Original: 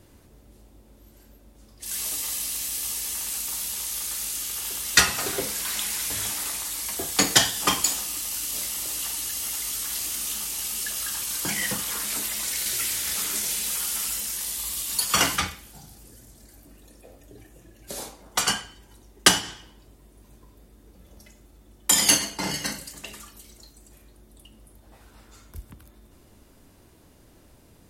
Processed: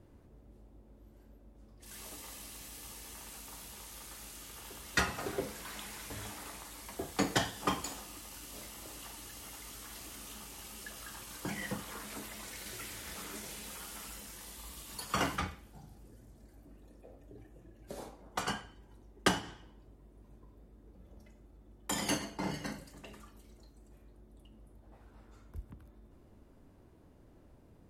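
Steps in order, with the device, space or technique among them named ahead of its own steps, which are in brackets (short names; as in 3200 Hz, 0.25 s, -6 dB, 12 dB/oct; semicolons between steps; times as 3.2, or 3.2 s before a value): through cloth (high shelf 2200 Hz -16.5 dB); gain -4.5 dB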